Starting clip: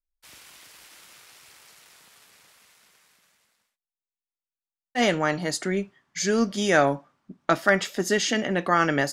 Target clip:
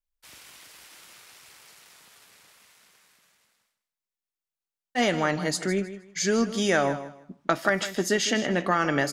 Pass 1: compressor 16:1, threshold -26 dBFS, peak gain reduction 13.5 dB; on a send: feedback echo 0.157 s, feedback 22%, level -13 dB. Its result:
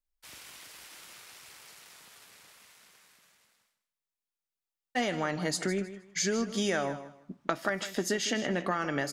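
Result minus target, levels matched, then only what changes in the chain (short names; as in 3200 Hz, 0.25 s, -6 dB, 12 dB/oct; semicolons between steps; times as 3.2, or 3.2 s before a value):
compressor: peak gain reduction +8 dB
change: compressor 16:1, threshold -17.5 dBFS, peak gain reduction 5.5 dB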